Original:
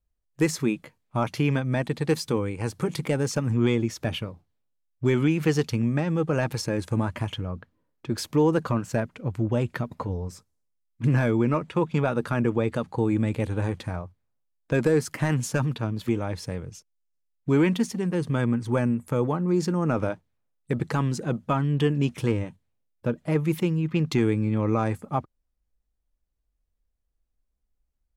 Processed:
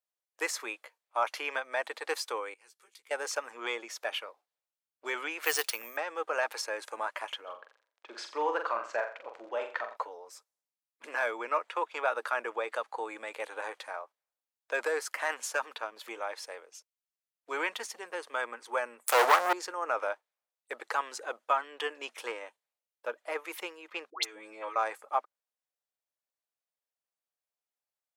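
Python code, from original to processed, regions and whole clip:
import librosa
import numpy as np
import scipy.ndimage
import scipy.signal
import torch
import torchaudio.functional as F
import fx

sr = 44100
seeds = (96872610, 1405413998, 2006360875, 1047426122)

y = fx.chain(x, sr, fx.tone_stack(knobs='6-0-2'),
    fx.doubler(ms=14.0, db=-6.0), at=(2.54, 3.11))
y = fx.chain(y, sr, fx.resample_bad(factor=3, down='none', up='hold'),
    fx.high_shelf(hz=2600.0, db=10.0), at=(5.44, 5.97))
y = fx.dmg_crackle(y, sr, seeds[0], per_s=17.0, level_db=-38.0, at=(7.46, 9.95), fade=0.02)
y = fx.air_absorb(y, sr, metres=130.0, at=(7.46, 9.95), fade=0.02)
y = fx.room_flutter(y, sr, wall_m=7.4, rt60_s=0.4, at=(7.46, 9.95), fade=0.02)
y = fx.chain(y, sr, fx.leveller(passes=5),
    fx.high_shelf(hz=6400.0, db=11.0),
    fx.band_widen(depth_pct=70), at=(19.07, 19.53))
y = fx.chain(y, sr, fx.comb(ms=6.2, depth=0.6),
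    fx.over_compress(threshold_db=-27.0, ratio=-0.5),
    fx.dispersion(late='highs', ms=114.0, hz=1200.0), at=(24.1, 24.76))
y = scipy.signal.sosfilt(scipy.signal.cheby2(4, 60, 160.0, 'highpass', fs=sr, output='sos'), y)
y = fx.dynamic_eq(y, sr, hz=1400.0, q=0.85, threshold_db=-45.0, ratio=4.0, max_db=5)
y = y * librosa.db_to_amplitude(-3.5)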